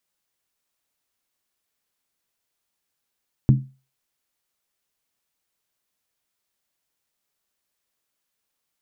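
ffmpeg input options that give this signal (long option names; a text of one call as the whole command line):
ffmpeg -f lavfi -i "aevalsrc='0.398*pow(10,-3*t/0.32)*sin(2*PI*133*t)+0.178*pow(10,-3*t/0.253)*sin(2*PI*212*t)+0.0794*pow(10,-3*t/0.219)*sin(2*PI*284.1*t)+0.0355*pow(10,-3*t/0.211)*sin(2*PI*305.4*t)+0.0158*pow(10,-3*t/0.196)*sin(2*PI*352.8*t)':duration=0.63:sample_rate=44100" out.wav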